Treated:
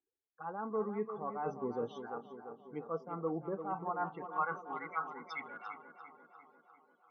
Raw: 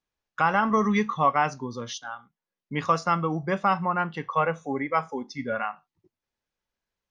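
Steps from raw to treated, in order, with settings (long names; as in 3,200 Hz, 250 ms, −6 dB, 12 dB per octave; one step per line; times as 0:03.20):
parametric band 570 Hz −9.5 dB 0.4 octaves
reversed playback
downward compressor 8 to 1, threshold −38 dBFS, peak gain reduction 20 dB
reversed playback
spectral peaks only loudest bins 32
phaser swept by the level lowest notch 180 Hz, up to 3,900 Hz, full sweep at −36.5 dBFS
band-pass filter sweep 490 Hz → 3,100 Hz, 0:03.56–0:05.67
on a send: tape delay 345 ms, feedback 69%, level −8 dB, low-pass 1,900 Hz
on the sum: level +12.5 dB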